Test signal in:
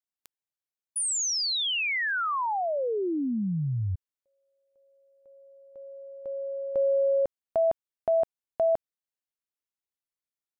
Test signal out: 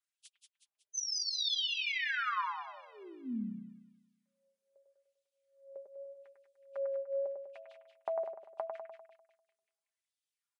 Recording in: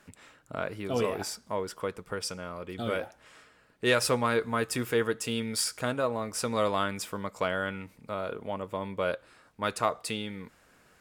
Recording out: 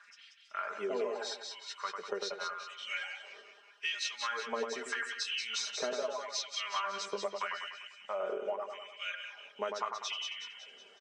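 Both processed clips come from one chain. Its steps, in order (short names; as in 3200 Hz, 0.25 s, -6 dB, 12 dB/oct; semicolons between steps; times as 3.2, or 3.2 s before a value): nonlinear frequency compression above 2400 Hz 1.5:1; comb 5 ms, depth 61%; LFO high-pass sine 0.81 Hz 420–3300 Hz; reverb removal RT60 0.98 s; compressor 10:1, threshold -31 dBFS; split-band echo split 2200 Hz, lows 99 ms, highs 0.185 s, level -5 dB; flange 0.19 Hz, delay 4.2 ms, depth 1.4 ms, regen -52%; gain +2 dB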